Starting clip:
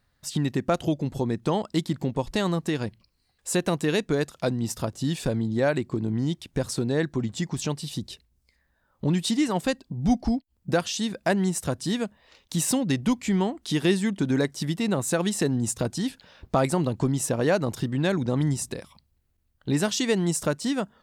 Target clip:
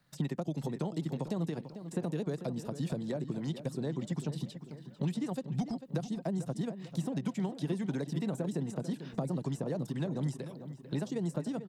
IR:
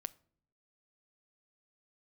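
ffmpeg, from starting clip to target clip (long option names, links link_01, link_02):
-filter_complex "[0:a]acrossover=split=170|870[link_01][link_02][link_03];[link_03]acompressor=threshold=-45dB:ratio=12[link_04];[link_01][link_02][link_04]amix=inputs=3:normalize=0,atempo=1.8,acrossover=split=630|3600[link_05][link_06][link_07];[link_05]acompressor=threshold=-38dB:ratio=4[link_08];[link_06]acompressor=threshold=-45dB:ratio=4[link_09];[link_07]acompressor=threshold=-52dB:ratio=4[link_10];[link_08][link_09][link_10]amix=inputs=3:normalize=0,lowshelf=frequency=110:width_type=q:width=3:gain=-9.5,asplit=2[link_11][link_12];[link_12]adelay=445,lowpass=frequency=3400:poles=1,volume=-11.5dB,asplit=2[link_13][link_14];[link_14]adelay=445,lowpass=frequency=3400:poles=1,volume=0.52,asplit=2[link_15][link_16];[link_16]adelay=445,lowpass=frequency=3400:poles=1,volume=0.52,asplit=2[link_17][link_18];[link_18]adelay=445,lowpass=frequency=3400:poles=1,volume=0.52,asplit=2[link_19][link_20];[link_20]adelay=445,lowpass=frequency=3400:poles=1,volume=0.52,asplit=2[link_21][link_22];[link_22]adelay=445,lowpass=frequency=3400:poles=1,volume=0.52[link_23];[link_11][link_13][link_15][link_17][link_19][link_21][link_23]amix=inputs=7:normalize=0"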